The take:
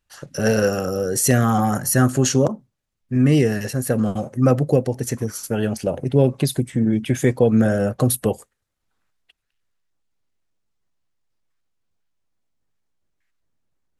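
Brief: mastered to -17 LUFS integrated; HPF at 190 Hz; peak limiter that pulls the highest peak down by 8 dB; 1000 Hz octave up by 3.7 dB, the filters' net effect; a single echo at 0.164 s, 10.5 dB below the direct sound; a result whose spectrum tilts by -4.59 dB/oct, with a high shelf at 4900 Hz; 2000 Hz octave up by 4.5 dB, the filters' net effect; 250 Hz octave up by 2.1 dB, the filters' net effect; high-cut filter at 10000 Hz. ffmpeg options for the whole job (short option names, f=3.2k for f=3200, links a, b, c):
-af "highpass=190,lowpass=10k,equalizer=f=250:t=o:g=4,equalizer=f=1k:t=o:g=4,equalizer=f=2k:t=o:g=3.5,highshelf=f=4.9k:g=6,alimiter=limit=-10dB:level=0:latency=1,aecho=1:1:164:0.299,volume=3.5dB"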